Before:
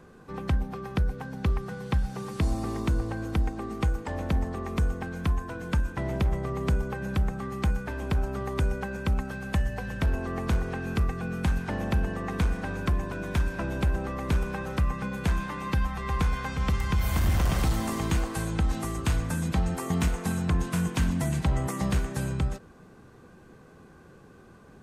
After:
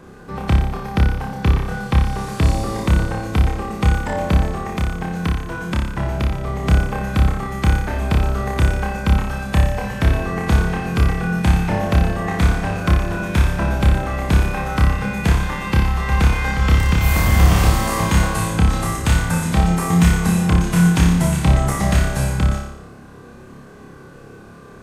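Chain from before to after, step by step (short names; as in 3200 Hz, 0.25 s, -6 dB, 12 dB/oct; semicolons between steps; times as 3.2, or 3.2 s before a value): 4.5–6.64 compressor 2.5:1, threshold -30 dBFS, peak gain reduction 6.5 dB; on a send: flutter echo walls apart 5 m, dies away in 0.72 s; on the sum: gain +8 dB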